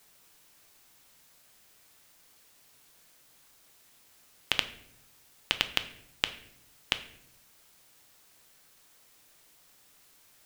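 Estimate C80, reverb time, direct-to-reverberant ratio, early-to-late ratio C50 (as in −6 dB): 16.5 dB, 0.75 s, 9.0 dB, 13.5 dB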